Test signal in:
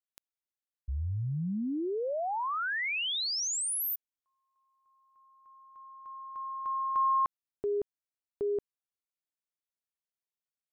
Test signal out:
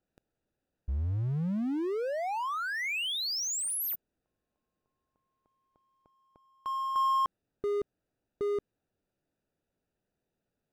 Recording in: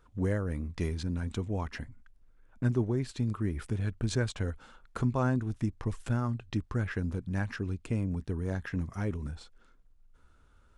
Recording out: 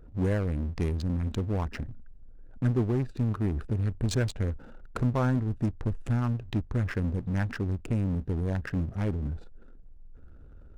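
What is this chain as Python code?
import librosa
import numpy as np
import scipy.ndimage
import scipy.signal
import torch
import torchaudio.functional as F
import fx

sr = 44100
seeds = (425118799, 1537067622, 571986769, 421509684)

y = fx.wiener(x, sr, points=41)
y = fx.power_curve(y, sr, exponent=0.7)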